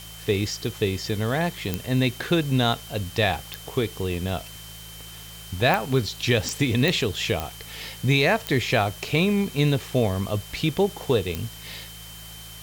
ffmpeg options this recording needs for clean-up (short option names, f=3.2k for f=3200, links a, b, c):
-af "adeclick=t=4,bandreject=f=54.7:t=h:w=4,bandreject=f=109.4:t=h:w=4,bandreject=f=164.1:t=h:w=4,bandreject=f=3.1k:w=30,afftdn=nr=28:nf=-41"